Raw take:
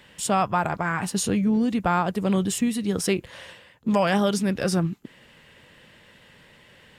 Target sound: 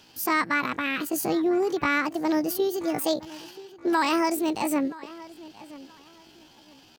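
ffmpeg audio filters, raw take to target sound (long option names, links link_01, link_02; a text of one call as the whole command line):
ffmpeg -i in.wav -filter_complex "[0:a]asplit=2[link_01][link_02];[link_02]adelay=976,lowpass=frequency=2500:poles=1,volume=-18.5dB,asplit=2[link_03][link_04];[link_04]adelay=976,lowpass=frequency=2500:poles=1,volume=0.26[link_05];[link_01][link_03][link_05]amix=inputs=3:normalize=0,asetrate=72056,aresample=44100,atempo=0.612027,volume=-2dB" out.wav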